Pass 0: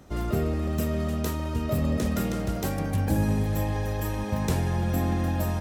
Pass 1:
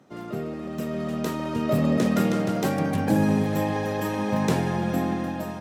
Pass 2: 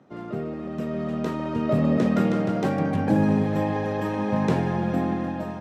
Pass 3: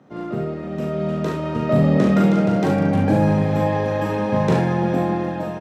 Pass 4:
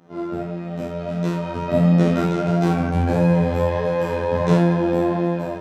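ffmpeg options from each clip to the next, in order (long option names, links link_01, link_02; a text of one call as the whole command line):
ffmpeg -i in.wav -af "lowpass=frequency=4000:poles=1,dynaudnorm=framelen=350:gausssize=7:maxgain=11.5dB,highpass=frequency=140:width=0.5412,highpass=frequency=140:width=1.3066,volume=-3.5dB" out.wav
ffmpeg -i in.wav -af "aemphasis=mode=reproduction:type=75fm" out.wav
ffmpeg -i in.wav -af "aecho=1:1:40|71:0.668|0.447,volume=3dB" out.wav
ffmpeg -i in.wav -af "afftfilt=real='hypot(re,im)*cos(PI*b)':imag='0':win_size=2048:overlap=0.75,flanger=delay=17.5:depth=3.6:speed=1.5,bandreject=frequency=65.34:width_type=h:width=4,bandreject=frequency=130.68:width_type=h:width=4,bandreject=frequency=196.02:width_type=h:width=4,bandreject=frequency=261.36:width_type=h:width=4,bandreject=frequency=326.7:width_type=h:width=4,bandreject=frequency=392.04:width_type=h:width=4,bandreject=frequency=457.38:width_type=h:width=4,bandreject=frequency=522.72:width_type=h:width=4,bandreject=frequency=588.06:width_type=h:width=4,bandreject=frequency=653.4:width_type=h:width=4,bandreject=frequency=718.74:width_type=h:width=4,bandreject=frequency=784.08:width_type=h:width=4,bandreject=frequency=849.42:width_type=h:width=4,bandreject=frequency=914.76:width_type=h:width=4,bandreject=frequency=980.1:width_type=h:width=4,bandreject=frequency=1045.44:width_type=h:width=4,bandreject=frequency=1110.78:width_type=h:width=4,bandreject=frequency=1176.12:width_type=h:width=4,bandreject=frequency=1241.46:width_type=h:width=4,bandreject=frequency=1306.8:width_type=h:width=4,bandreject=frequency=1372.14:width_type=h:width=4,bandreject=frequency=1437.48:width_type=h:width=4,bandreject=frequency=1502.82:width_type=h:width=4,bandreject=frequency=1568.16:width_type=h:width=4,bandreject=frequency=1633.5:width_type=h:width=4,bandreject=frequency=1698.84:width_type=h:width=4,bandreject=frequency=1764.18:width_type=h:width=4,bandreject=frequency=1829.52:width_type=h:width=4,bandreject=frequency=1894.86:width_type=h:width=4,bandreject=frequency=1960.2:width_type=h:width=4,bandreject=frequency=2025.54:width_type=h:width=4,bandreject=frequency=2090.88:width_type=h:width=4,bandreject=frequency=2156.22:width_type=h:width=4,volume=6.5dB" out.wav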